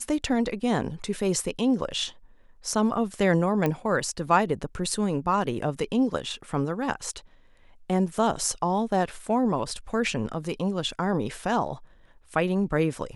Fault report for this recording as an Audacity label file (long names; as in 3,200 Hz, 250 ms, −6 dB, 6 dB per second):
3.660000	3.660000	click −13 dBFS